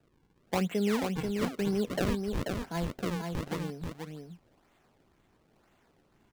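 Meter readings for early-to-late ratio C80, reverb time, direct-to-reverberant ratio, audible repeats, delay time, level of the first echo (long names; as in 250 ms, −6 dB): no reverb audible, no reverb audible, no reverb audible, 1, 486 ms, −4.5 dB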